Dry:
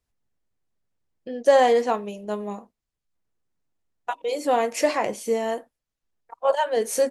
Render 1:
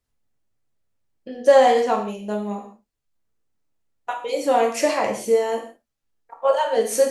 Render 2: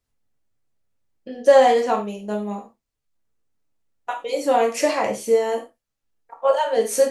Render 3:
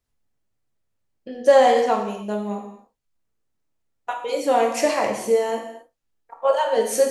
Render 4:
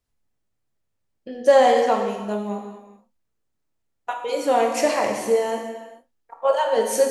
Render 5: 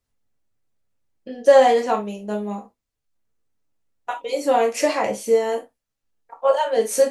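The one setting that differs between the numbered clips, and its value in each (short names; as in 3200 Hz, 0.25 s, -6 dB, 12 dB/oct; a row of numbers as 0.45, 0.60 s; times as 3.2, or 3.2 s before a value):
non-linear reverb, gate: 200, 130, 300, 470, 90 ms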